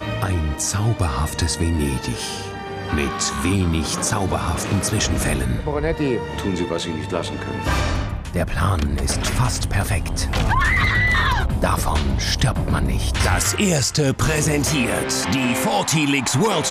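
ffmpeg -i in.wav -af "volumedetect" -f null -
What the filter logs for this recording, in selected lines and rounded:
mean_volume: -20.2 dB
max_volume: -6.0 dB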